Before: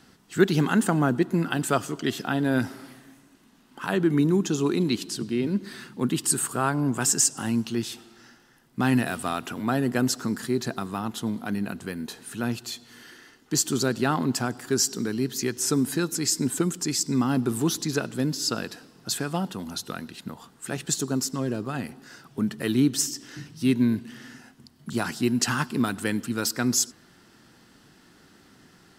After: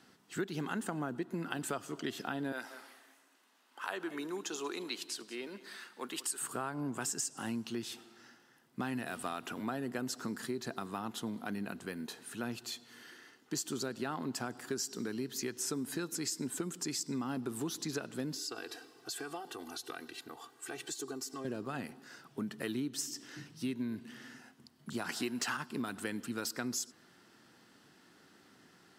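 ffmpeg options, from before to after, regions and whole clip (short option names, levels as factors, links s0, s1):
-filter_complex "[0:a]asettb=1/sr,asplit=3[s0][s1][s2];[s0]atrim=end=2.524[s3];[s1]atrim=start=2.52:end=6.41,asetpts=PTS-STARTPTS,afade=t=in:d=0.004:c=qsin,afade=t=out:st=3.886:d=0.004:c=qsin,highpass=570,aecho=1:1:187:0.141,atrim=end_sample=171549[s4];[s2]atrim=start=6.406[s5];[s3][s4]acrossfade=d=0.004:c1=hsin:c2=qsin[s6];[s6][s5]acrossfade=d=0.004:c1=qsin:c2=hsin,asettb=1/sr,asplit=3[s7][s8][s9];[s7]atrim=end=18.374[s10];[s8]atrim=start=18.37:end=21.45,asetpts=PTS-STARTPTS,afade=t=in:d=0.004:c=qsin,afade=t=out:st=3.076:d=0.004:c=qsin,highpass=f=230:p=1,acompressor=threshold=0.0178:ratio=3:attack=3.2:release=140:knee=1:detection=peak,aecho=1:1:2.6:0.99,atrim=end_sample=135828[s11];[s9]atrim=start=21.446[s12];[s10][s11]acrossfade=d=0.004:c1=hsin:c2=qsin[s13];[s13][s12]acrossfade=d=0.004:c1=qsin:c2=hsin,asettb=1/sr,asplit=3[s14][s15][s16];[s14]atrim=end=25.094[s17];[s15]atrim=start=25.09:end=25.57,asetpts=PTS-STARTPTS,afade=t=in:d=0.004:c=qsin,afade=t=out:st=0.476:d=0.004:c=qsin,highshelf=f=6400:g=11,asplit=2[s18][s19];[s19]highpass=f=720:p=1,volume=5.62,asoftclip=type=tanh:threshold=0.708[s20];[s18][s20]amix=inputs=2:normalize=0,lowpass=f=2500:p=1,volume=0.501[s21];[s16]atrim=start=25.566[s22];[s17][s21]acrossfade=d=0.004:c1=hsin:c2=qsin[s23];[s23][s22]acrossfade=d=0.004:c1=qsin:c2=hsin,highpass=95,bass=f=250:g=-5,treble=f=4000:g=-2,acompressor=threshold=0.0398:ratio=6,volume=0.531"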